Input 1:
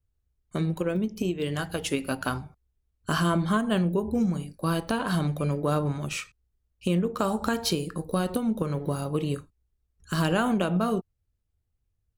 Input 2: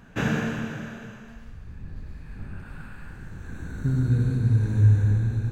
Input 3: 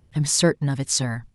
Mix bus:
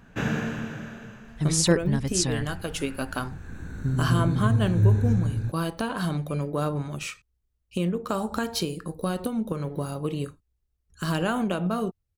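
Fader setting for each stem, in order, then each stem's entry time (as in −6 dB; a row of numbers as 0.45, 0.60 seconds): −1.5, −2.0, −3.0 decibels; 0.90, 0.00, 1.25 seconds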